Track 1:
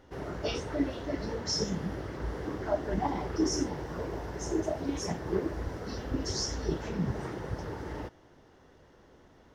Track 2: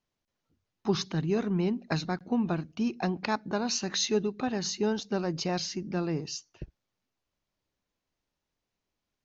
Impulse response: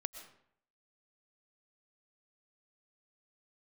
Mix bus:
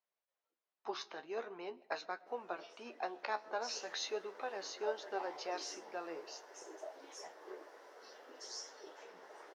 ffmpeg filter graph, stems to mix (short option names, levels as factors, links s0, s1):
-filter_complex "[0:a]adelay=2150,volume=0.376,afade=t=in:st=3.47:d=0.38:silence=0.354813[s0];[1:a]lowpass=f=2000:p=1,volume=0.75,asplit=2[s1][s2];[s2]volume=0.282[s3];[2:a]atrim=start_sample=2205[s4];[s3][s4]afir=irnorm=-1:irlink=0[s5];[s0][s1][s5]amix=inputs=3:normalize=0,highpass=f=480:w=0.5412,highpass=f=480:w=1.3066,flanger=delay=9.8:depth=4.6:regen=49:speed=0.45:shape=triangular"